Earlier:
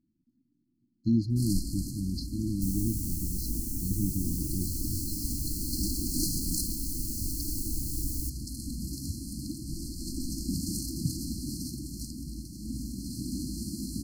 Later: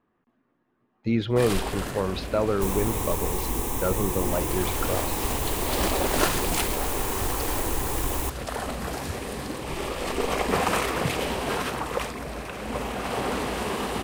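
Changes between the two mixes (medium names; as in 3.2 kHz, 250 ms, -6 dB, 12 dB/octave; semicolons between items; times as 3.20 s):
first sound: send +7.0 dB; second sound +4.5 dB; master: remove brick-wall FIR band-stop 340–4100 Hz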